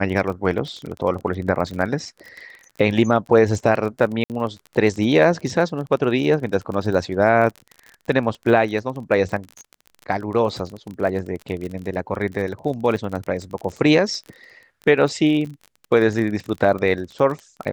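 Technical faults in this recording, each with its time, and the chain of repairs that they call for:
surface crackle 29 per second −28 dBFS
0:04.24–0:04.30: drop-out 58 ms
0:12.96: drop-out 3.6 ms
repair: click removal
repair the gap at 0:04.24, 58 ms
repair the gap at 0:12.96, 3.6 ms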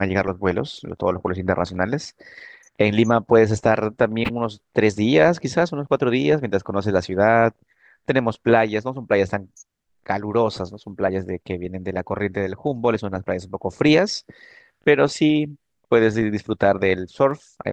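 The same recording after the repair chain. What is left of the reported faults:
none of them is left

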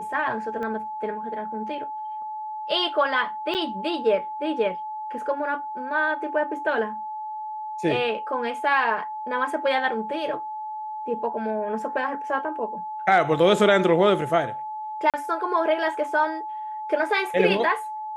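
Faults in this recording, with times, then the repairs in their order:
whistle 860 Hz −30 dBFS
0:00.63: click −22 dBFS
0:03.54–0:03.55: drop-out 8.9 ms
0:15.10–0:15.14: drop-out 37 ms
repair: click removal
notch filter 860 Hz, Q 30
repair the gap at 0:03.54, 8.9 ms
repair the gap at 0:15.10, 37 ms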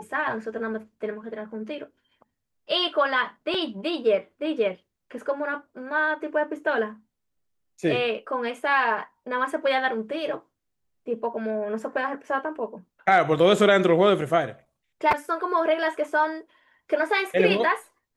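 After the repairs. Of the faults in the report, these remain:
0:00.63: click

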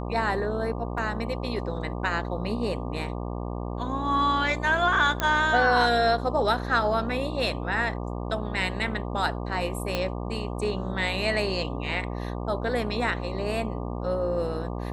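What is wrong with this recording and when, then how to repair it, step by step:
mains buzz 60 Hz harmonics 20 −32 dBFS
0:00.98: drop-out 2.3 ms
0:05.20: click −10 dBFS
0:09.95: click −12 dBFS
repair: click removal
hum removal 60 Hz, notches 20
repair the gap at 0:00.98, 2.3 ms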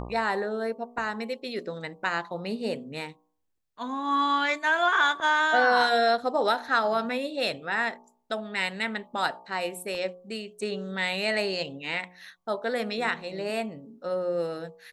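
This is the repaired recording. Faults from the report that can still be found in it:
0:09.95: click

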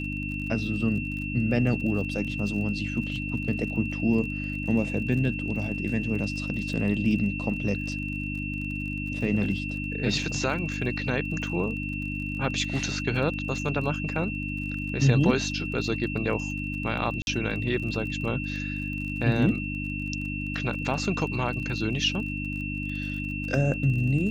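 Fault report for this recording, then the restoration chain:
surface crackle 37 per second −36 dBFS
mains hum 50 Hz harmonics 6 −33 dBFS
whistle 2,700 Hz −34 dBFS
0:17.22–0:17.27: drop-out 51 ms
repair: click removal
notch filter 2,700 Hz, Q 30
hum removal 50 Hz, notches 6
repair the gap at 0:17.22, 51 ms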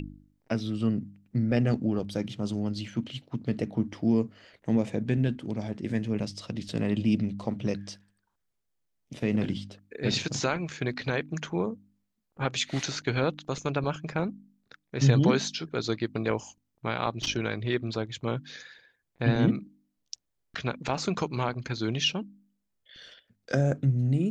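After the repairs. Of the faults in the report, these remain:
none of them is left

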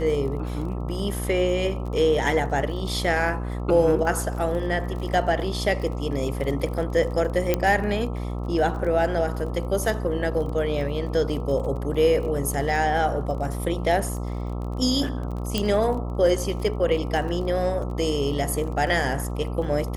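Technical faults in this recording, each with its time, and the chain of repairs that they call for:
mains buzz 60 Hz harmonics 22 −29 dBFS
surface crackle 26 per second −33 dBFS
0:07.54: click −7 dBFS
0:15.58: click −9 dBFS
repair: click removal
hum removal 60 Hz, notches 22

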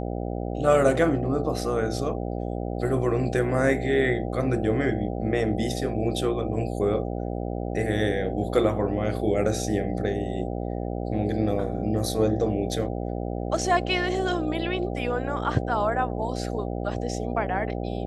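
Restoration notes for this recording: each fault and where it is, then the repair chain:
mains buzz 60 Hz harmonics 13 −30 dBFS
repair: hum removal 60 Hz, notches 13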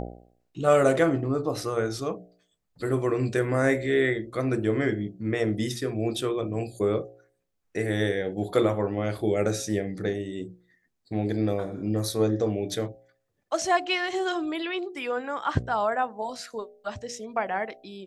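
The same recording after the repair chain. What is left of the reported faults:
none of them is left

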